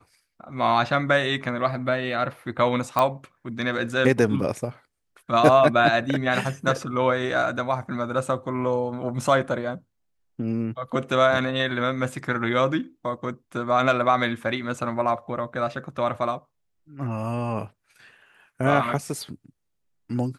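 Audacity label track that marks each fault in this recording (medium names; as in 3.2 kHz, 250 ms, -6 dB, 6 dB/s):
2.990000	2.990000	pop -9 dBFS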